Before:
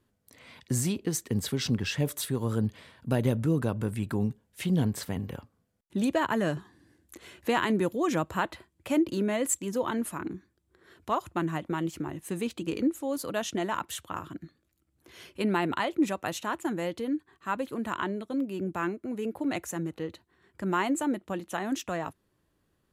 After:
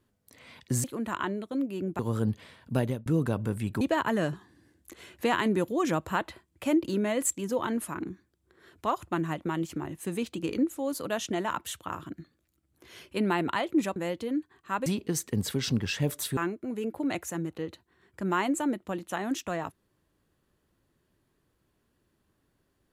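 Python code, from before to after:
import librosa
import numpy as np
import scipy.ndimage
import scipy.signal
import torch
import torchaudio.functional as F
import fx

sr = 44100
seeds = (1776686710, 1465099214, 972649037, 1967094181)

y = fx.edit(x, sr, fx.swap(start_s=0.84, length_s=1.51, other_s=17.63, other_length_s=1.15),
    fx.fade_out_span(start_s=3.15, length_s=0.27),
    fx.cut(start_s=4.17, length_s=1.88),
    fx.cut(start_s=16.2, length_s=0.53), tone=tone)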